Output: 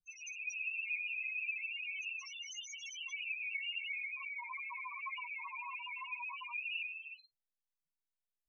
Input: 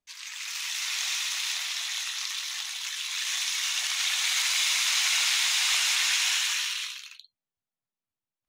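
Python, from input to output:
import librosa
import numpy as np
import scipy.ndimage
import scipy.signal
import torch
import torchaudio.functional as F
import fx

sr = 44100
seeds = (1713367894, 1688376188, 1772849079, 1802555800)

y = fx.notch(x, sr, hz=2500.0, q=5.9, at=(2.19, 3.2))
y = fx.env_lowpass_down(y, sr, base_hz=1300.0, full_db=-23.0)
y = fx.ripple_eq(y, sr, per_octave=0.75, db=13)
y = fx.spec_topn(y, sr, count=2)
y = y * 10.0 ** (3.5 / 20.0)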